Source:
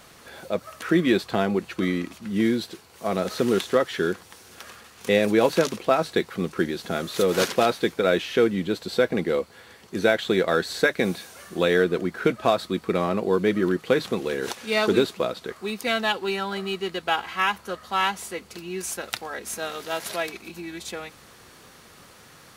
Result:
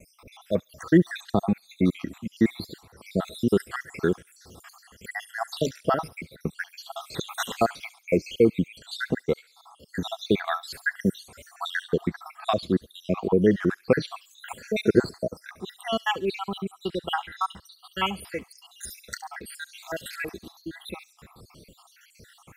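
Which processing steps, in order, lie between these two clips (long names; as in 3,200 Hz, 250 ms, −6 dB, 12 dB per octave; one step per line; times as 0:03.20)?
time-frequency cells dropped at random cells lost 74%
noise gate with hold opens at −48 dBFS
low-shelf EQ 200 Hz +11 dB
on a send: delay with a high-pass on its return 69 ms, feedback 43%, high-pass 3,500 Hz, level −13 dB
on the sum: gain on a spectral selection 0:09.61–0:09.98, 430–2,200 Hz +8 dB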